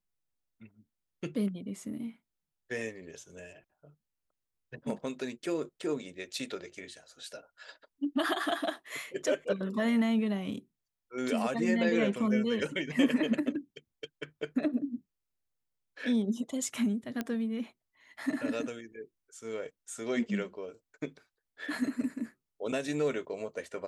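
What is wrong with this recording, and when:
0:17.21: click −19 dBFS

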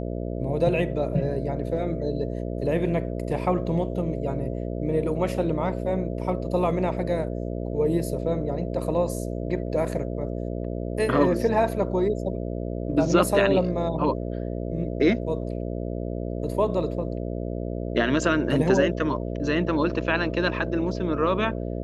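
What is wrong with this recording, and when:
mains buzz 60 Hz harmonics 11 −30 dBFS

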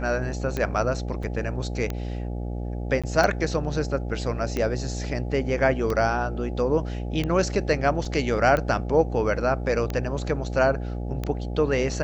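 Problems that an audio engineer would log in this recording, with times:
mains buzz 60 Hz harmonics 14 −30 dBFS
scratch tick 45 rpm −14 dBFS
0:01.23: drop-out 4 ms
0:03.02–0:03.04: drop-out 16 ms
0:08.05: drop-out 3.9 ms

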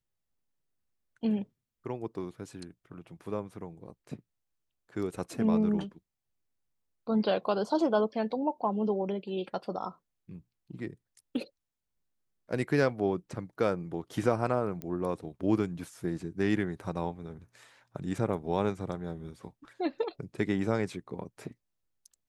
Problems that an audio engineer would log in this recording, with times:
0:14.82: click −23 dBFS

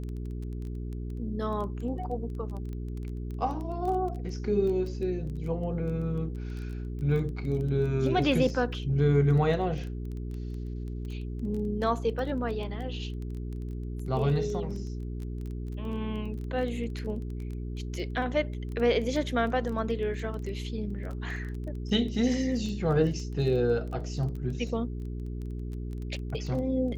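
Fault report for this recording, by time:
surface crackle 13 per second −35 dBFS
mains hum 60 Hz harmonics 7 −35 dBFS

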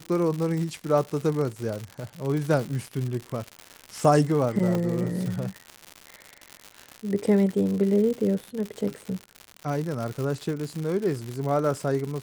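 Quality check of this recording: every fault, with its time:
surface crackle 160 per second −29 dBFS
0:04.75: drop-out 2.2 ms

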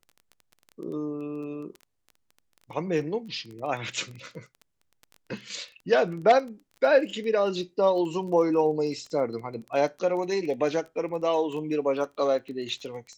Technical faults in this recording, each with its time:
surface crackle 14 per second −35 dBFS

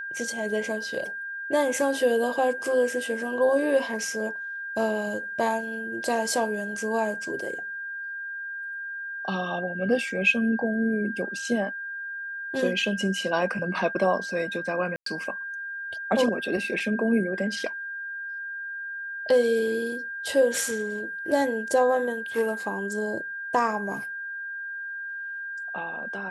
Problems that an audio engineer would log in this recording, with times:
whistle 1,600 Hz −32 dBFS
0:14.96–0:15.06: drop-out 103 ms

